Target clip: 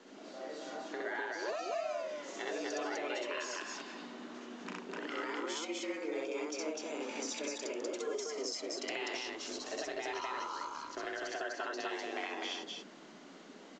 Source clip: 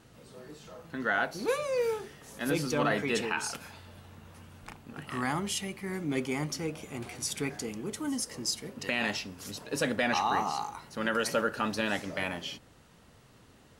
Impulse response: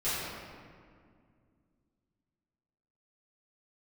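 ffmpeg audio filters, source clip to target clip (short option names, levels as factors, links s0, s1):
-filter_complex "[0:a]acompressor=threshold=0.0112:ratio=10,afreqshift=150,asettb=1/sr,asplit=3[s0][s1][s2];[s0]atrim=end=9.234[s3];[s1]atrim=start=9.23:end=11.3,asetpts=PTS-STARTPTS,afade=t=in:d=0.004:c=qsin,afade=t=out:st=2.066:d=0.004:c=qsin,aeval=exprs='sgn(val(0))*max(abs(val(0))-0.00141,0)':c=same[s4];[s2]atrim=start=11.296[s5];[s3][s4]acrossfade=d=0.004:c1=hsin:c2=qsin[s6];[s6][s5]acrossfade=d=0.004:c1=qsin:c2=hsin,aecho=1:1:64.14|250.7:1|0.891" -ar 16000 -c:a pcm_mulaw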